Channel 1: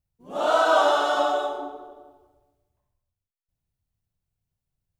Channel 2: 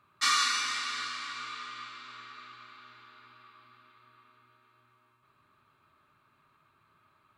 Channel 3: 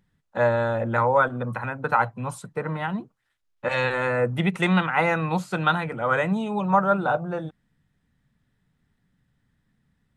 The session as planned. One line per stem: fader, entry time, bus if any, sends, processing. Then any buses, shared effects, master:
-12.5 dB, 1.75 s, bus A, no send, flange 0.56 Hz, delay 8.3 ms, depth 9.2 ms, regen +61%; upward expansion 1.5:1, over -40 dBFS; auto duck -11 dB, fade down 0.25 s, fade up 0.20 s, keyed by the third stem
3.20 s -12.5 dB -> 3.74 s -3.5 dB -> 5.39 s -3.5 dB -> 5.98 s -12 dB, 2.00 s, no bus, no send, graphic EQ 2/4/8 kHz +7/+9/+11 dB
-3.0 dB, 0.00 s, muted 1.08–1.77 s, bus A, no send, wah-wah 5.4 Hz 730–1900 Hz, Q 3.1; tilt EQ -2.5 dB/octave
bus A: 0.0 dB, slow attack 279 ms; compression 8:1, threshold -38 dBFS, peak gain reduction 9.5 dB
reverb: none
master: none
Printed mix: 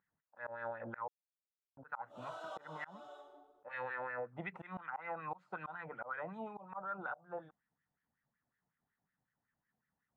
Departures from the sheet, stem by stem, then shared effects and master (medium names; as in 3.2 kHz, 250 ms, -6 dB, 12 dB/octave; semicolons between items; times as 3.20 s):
stem 1: missing upward expansion 1.5:1, over -40 dBFS; stem 2: muted